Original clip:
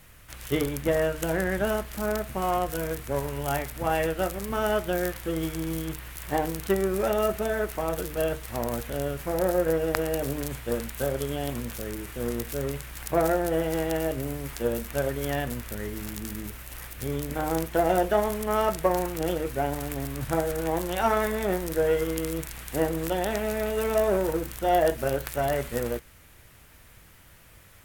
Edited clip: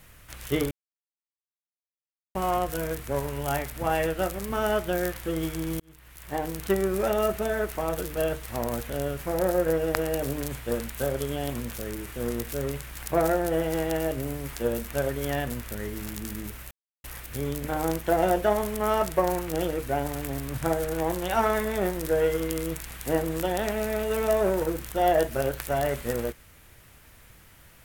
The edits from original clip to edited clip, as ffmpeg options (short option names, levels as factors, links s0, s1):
-filter_complex "[0:a]asplit=5[s0][s1][s2][s3][s4];[s0]atrim=end=0.71,asetpts=PTS-STARTPTS,afade=t=out:st=0.706:d=0.004:c=hsin[s5];[s1]atrim=start=0.71:end=2.35,asetpts=PTS-STARTPTS,volume=0[s6];[s2]atrim=start=2.35:end=5.8,asetpts=PTS-STARTPTS,afade=t=in:d=0.004:c=hsin,afade=t=out:st=3.446:d=0.004:c=hsin[s7];[s3]atrim=start=5.8:end=16.71,asetpts=PTS-STARTPTS,afade=t=in:d=0.9,afade=t=out:st=10.906:d=0.004:c=hsin,apad=pad_dur=0.33[s8];[s4]atrim=start=16.71,asetpts=PTS-STARTPTS,afade=t=in:d=0.004:c=hsin[s9];[s5][s6][s7][s8][s9]concat=n=5:v=0:a=1"